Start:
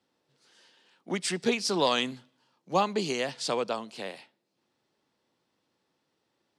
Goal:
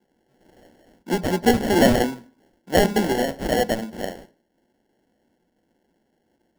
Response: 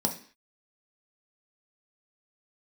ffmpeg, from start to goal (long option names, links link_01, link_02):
-filter_complex "[0:a]asettb=1/sr,asplit=3[link_01][link_02][link_03];[link_01]atrim=end=1.474[link_04];[link_02]atrim=start=1.47:end=2.06,asetpts=PTS-STARTPTS,afade=type=in:duration=0.004:curve=qsin,afade=type=out:start_time=0.586:duration=0.004:curve=qsin,asplit=2[link_05][link_06];[link_06]highpass=frequency=720:poles=1,volume=13dB,asoftclip=type=tanh:threshold=-12.5dB[link_07];[link_05][link_07]amix=inputs=2:normalize=0,lowpass=frequency=1800:poles=1,volume=-6dB[link_08];[link_03]atrim=start=2.056[link_09];[link_04][link_08]acrossfade=duration=0.004:curve1=hsin:curve2=qsin[link_10];[link_10][link_09]acrossfade=duration=0.004:curve1=qsin:curve2=hsin,acrusher=samples=36:mix=1:aa=0.000001,asplit=2[link_11][link_12];[1:a]atrim=start_sample=2205,lowpass=4700[link_13];[link_12][link_13]afir=irnorm=-1:irlink=0,volume=-17.5dB[link_14];[link_11][link_14]amix=inputs=2:normalize=0,volume=6dB"